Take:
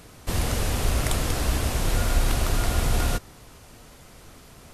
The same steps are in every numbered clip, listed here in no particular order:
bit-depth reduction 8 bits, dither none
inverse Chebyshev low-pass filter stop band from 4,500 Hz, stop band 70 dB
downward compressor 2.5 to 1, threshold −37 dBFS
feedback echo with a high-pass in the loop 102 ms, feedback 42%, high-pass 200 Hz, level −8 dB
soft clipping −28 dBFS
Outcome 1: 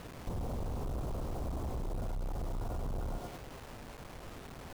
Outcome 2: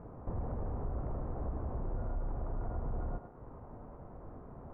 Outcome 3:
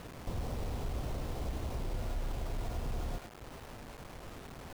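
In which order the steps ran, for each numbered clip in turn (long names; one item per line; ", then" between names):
feedback echo with a high-pass in the loop, then soft clipping, then inverse Chebyshev low-pass filter, then bit-depth reduction, then downward compressor
downward compressor, then bit-depth reduction, then feedback echo with a high-pass in the loop, then soft clipping, then inverse Chebyshev low-pass filter
downward compressor, then feedback echo with a high-pass in the loop, then soft clipping, then inverse Chebyshev low-pass filter, then bit-depth reduction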